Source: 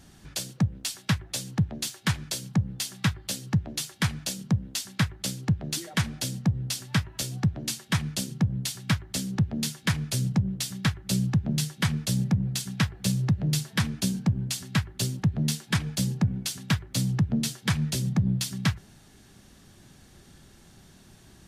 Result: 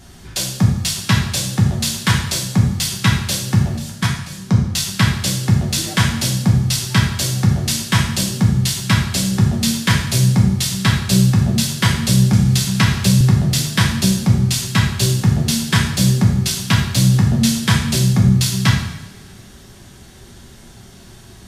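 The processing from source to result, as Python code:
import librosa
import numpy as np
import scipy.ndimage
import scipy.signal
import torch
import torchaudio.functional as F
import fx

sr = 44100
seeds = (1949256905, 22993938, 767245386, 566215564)

y = fx.level_steps(x, sr, step_db=23, at=(3.74, 4.43))
y = fx.rev_double_slope(y, sr, seeds[0], early_s=0.72, late_s=2.3, knee_db=-18, drr_db=-2.5)
y = fx.band_squash(y, sr, depth_pct=40, at=(12.33, 13.21))
y = F.gain(torch.from_numpy(y), 7.5).numpy()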